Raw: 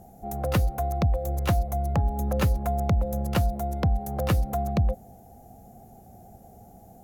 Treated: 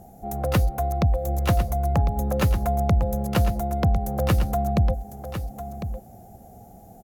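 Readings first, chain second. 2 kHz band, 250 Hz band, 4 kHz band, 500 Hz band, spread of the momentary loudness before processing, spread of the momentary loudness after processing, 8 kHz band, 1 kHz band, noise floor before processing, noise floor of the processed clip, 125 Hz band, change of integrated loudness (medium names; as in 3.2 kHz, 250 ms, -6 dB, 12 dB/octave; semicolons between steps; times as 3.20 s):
+3.0 dB, +3.0 dB, +3.0 dB, +3.0 dB, 3 LU, 11 LU, +3.0 dB, +3.5 dB, -51 dBFS, -47 dBFS, +3.0 dB, +2.5 dB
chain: delay 1052 ms -10 dB; trim +2.5 dB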